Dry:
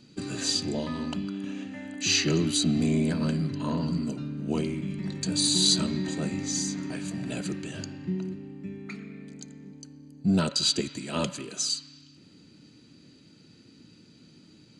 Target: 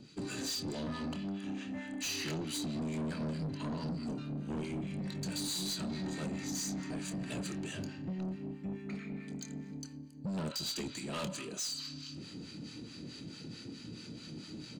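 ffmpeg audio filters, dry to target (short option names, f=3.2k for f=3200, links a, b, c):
-filter_complex "[0:a]areverse,acompressor=mode=upward:threshold=-33dB:ratio=2.5,areverse,acrossover=split=840[a][b];[a]aeval=exprs='val(0)*(1-0.7/2+0.7/2*cos(2*PI*4.6*n/s))':c=same[c];[b]aeval=exprs='val(0)*(1-0.7/2-0.7/2*cos(2*PI*4.6*n/s))':c=same[d];[c][d]amix=inputs=2:normalize=0,acompressor=threshold=-29dB:ratio=6,asplit=2[e][f];[f]adelay=26,volume=-11dB[g];[e][g]amix=inputs=2:normalize=0,asoftclip=type=tanh:threshold=-34.5dB,volume=1dB"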